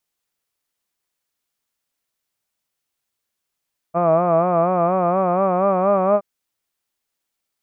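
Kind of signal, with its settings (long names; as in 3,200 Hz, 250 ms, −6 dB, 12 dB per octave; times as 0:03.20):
vowel by formant synthesis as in hud, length 2.27 s, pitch 166 Hz, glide +3 semitones, vibrato 4.2 Hz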